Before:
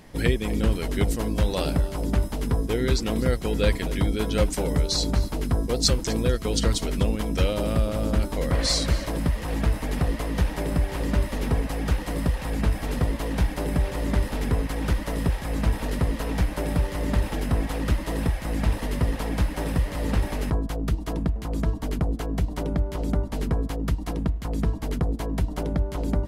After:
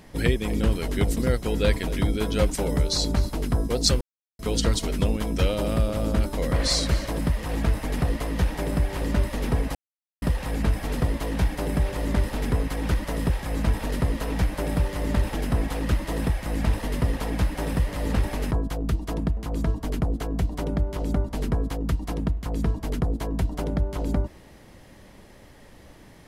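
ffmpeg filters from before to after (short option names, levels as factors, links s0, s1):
-filter_complex "[0:a]asplit=6[s0][s1][s2][s3][s4][s5];[s0]atrim=end=1.172[s6];[s1]atrim=start=3.158:end=6,asetpts=PTS-STARTPTS,afade=t=out:st=2.838:d=0.004:c=hsin[s7];[s2]atrim=start=6:end=6.38,asetpts=PTS-STARTPTS,volume=0[s8];[s3]atrim=start=6.38:end=11.74,asetpts=PTS-STARTPTS,afade=t=in:d=0.004:c=hsin,afade=t=out:st=5.356:d=0.004:c=hsin[s9];[s4]atrim=start=11.74:end=12.21,asetpts=PTS-STARTPTS,volume=0[s10];[s5]atrim=start=12.21,asetpts=PTS-STARTPTS,afade=t=in:d=0.004:c=hsin[s11];[s7][s8][s9][s10][s11]concat=n=5:v=0:a=1[s12];[s6][s12]acrossfade=d=0.004:c1=hsin:c2=hsin"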